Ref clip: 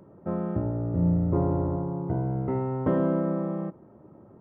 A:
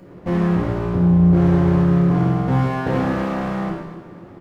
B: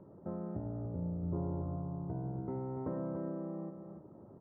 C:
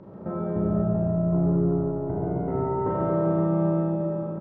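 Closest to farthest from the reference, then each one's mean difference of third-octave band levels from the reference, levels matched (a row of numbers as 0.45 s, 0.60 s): B, C, A; 3.0 dB, 4.5 dB, 7.0 dB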